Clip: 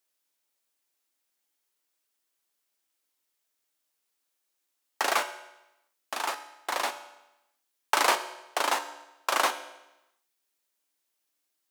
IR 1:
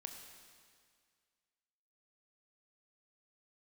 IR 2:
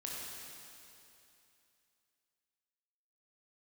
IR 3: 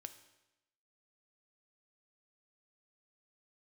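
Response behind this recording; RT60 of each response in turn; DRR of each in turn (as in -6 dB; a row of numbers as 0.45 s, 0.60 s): 3; 2.0 s, 2.8 s, 0.95 s; 3.5 dB, -4.5 dB, 9.0 dB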